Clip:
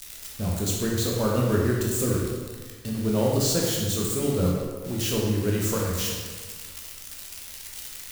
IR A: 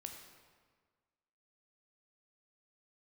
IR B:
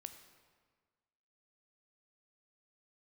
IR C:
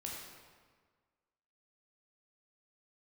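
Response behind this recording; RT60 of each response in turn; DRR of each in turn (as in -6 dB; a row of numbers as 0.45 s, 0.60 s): C; 1.6 s, 1.6 s, 1.6 s; 3.0 dB, 7.5 dB, -3.0 dB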